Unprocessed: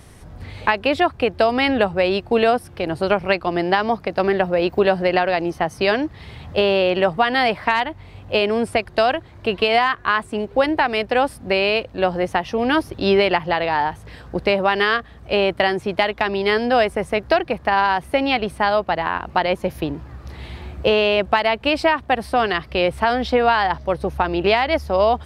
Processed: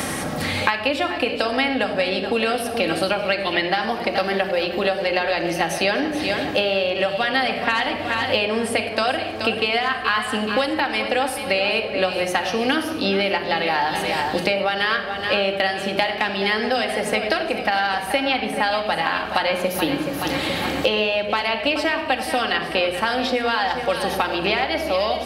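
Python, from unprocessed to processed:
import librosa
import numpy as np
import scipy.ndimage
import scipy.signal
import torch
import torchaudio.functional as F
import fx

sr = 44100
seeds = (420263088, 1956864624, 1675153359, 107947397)

p1 = fx.hum_notches(x, sr, base_hz=60, count=9)
p2 = p1 + fx.echo_feedback(p1, sr, ms=426, feedback_pct=47, wet_db=-13.5, dry=0)
p3 = fx.spec_box(p2, sr, start_s=3.4, length_s=0.27, low_hz=1700.0, high_hz=4400.0, gain_db=11)
p4 = fx.low_shelf(p3, sr, hz=100.0, db=-10.5)
p5 = fx.rider(p4, sr, range_db=10, speed_s=0.5)
p6 = fx.high_shelf(p5, sr, hz=3100.0, db=10.0)
p7 = fx.notch(p6, sr, hz=1000.0, q=16.0)
p8 = fx.room_shoebox(p7, sr, seeds[0], volume_m3=3100.0, walls='furnished', distance_m=2.2)
p9 = fx.band_squash(p8, sr, depth_pct=100)
y = F.gain(torch.from_numpy(p9), -5.5).numpy()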